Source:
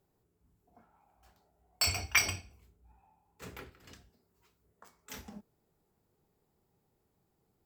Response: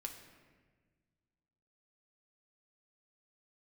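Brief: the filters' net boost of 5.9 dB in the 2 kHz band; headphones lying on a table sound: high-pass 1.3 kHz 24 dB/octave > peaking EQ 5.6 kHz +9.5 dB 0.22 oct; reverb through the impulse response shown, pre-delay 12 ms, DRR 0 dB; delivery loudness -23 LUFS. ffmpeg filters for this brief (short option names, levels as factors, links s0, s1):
-filter_complex "[0:a]equalizer=f=2000:t=o:g=7,asplit=2[s0][s1];[1:a]atrim=start_sample=2205,adelay=12[s2];[s1][s2]afir=irnorm=-1:irlink=0,volume=1.33[s3];[s0][s3]amix=inputs=2:normalize=0,highpass=f=1300:w=0.5412,highpass=f=1300:w=1.3066,equalizer=f=5600:t=o:w=0.22:g=9.5,volume=0.891"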